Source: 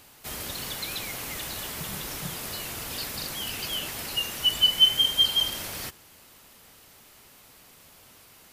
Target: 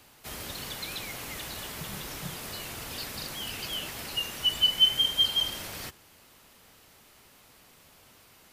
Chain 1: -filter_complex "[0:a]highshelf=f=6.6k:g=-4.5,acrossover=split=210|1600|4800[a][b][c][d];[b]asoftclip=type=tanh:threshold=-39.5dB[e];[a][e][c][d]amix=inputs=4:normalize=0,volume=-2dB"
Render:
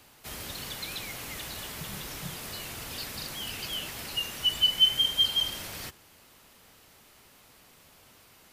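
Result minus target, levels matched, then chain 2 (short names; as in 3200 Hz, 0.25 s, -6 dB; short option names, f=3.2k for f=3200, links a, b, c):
soft clip: distortion +13 dB
-filter_complex "[0:a]highshelf=f=6.6k:g=-4.5,acrossover=split=210|1600|4800[a][b][c][d];[b]asoftclip=type=tanh:threshold=-30.5dB[e];[a][e][c][d]amix=inputs=4:normalize=0,volume=-2dB"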